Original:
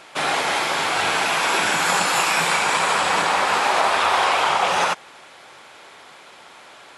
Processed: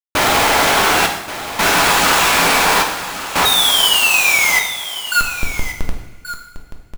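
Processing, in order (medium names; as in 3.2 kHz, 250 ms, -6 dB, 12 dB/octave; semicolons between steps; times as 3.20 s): de-hum 161.2 Hz, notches 5; in parallel at +2 dB: compression, threshold -32 dBFS, peak gain reduction 16 dB; on the sum: painted sound fall, 3.45–5.21 s, 1.4–3.8 kHz -10 dBFS; Schmitt trigger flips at -26.5 dBFS; trance gate "xxxxxx...x" 85 bpm -60 dB; on a send: delay 1129 ms -12.5 dB; on the sum: two-slope reverb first 0.84 s, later 2.8 s, from -20 dB, DRR 2 dB; trim -1 dB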